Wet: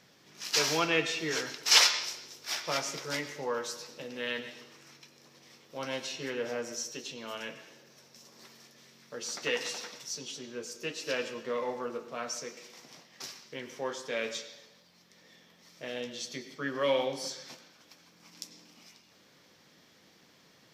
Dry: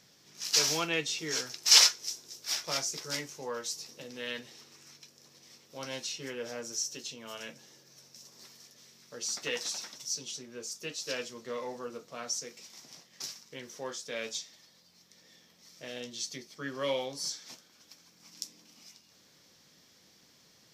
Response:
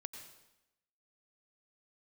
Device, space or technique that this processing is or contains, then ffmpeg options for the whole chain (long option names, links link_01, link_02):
filtered reverb send: -filter_complex "[0:a]asplit=2[link_01][link_02];[link_02]highpass=frequency=190:poles=1,lowpass=3600[link_03];[1:a]atrim=start_sample=2205[link_04];[link_03][link_04]afir=irnorm=-1:irlink=0,volume=6.5dB[link_05];[link_01][link_05]amix=inputs=2:normalize=0,volume=-2.5dB"